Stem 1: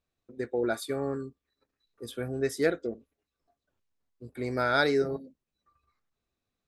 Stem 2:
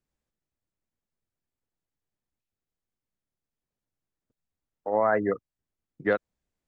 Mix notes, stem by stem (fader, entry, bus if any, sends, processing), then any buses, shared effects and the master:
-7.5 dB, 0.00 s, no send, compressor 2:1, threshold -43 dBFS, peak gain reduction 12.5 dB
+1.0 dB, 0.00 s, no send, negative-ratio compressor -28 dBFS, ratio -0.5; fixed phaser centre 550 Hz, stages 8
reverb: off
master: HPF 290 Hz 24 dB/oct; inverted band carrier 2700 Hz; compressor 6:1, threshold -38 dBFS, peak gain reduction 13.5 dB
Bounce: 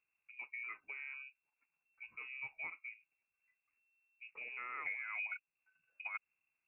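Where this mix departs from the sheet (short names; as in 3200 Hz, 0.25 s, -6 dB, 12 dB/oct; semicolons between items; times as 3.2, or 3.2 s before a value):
stem 2 +1.0 dB -> -6.5 dB; master: missing HPF 290 Hz 24 dB/oct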